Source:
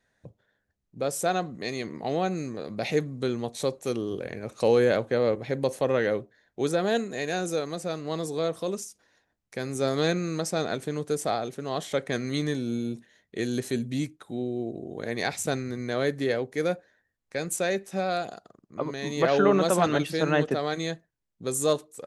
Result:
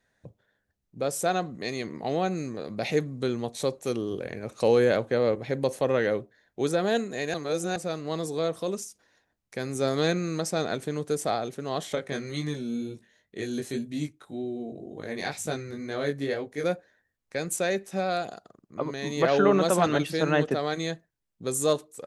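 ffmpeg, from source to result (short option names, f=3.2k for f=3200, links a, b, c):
-filter_complex "[0:a]asettb=1/sr,asplit=3[a][b][c];[a]atrim=end=11.954[d];[b]atrim=start=11.95:end=16.64,asetpts=PTS-STARTPTS,afade=t=in:d=0.004:c=qsin,afade=t=out:st=4.686:d=0.004:c=qsin,flanger=delay=19:depth=2.7:speed=2[e];[c]atrim=start=16.636[f];[d][e]acrossfade=d=0.004:c1=hsin:c2=qsin[g];[g][f]acrossfade=d=0.004:c1=qsin:c2=hsin,asplit=3[h][i][j];[h]atrim=end=7.342[k];[i]atrim=start=7.338:end=7.762,asetpts=PTS-STARTPTS,areverse[l];[j]atrim=start=7.758[m];[k][l]acrossfade=d=0.004:c1=hsin:c2=hsin[n];[n][m]acrossfade=d=0.004:c1=hsin:c2=hsin"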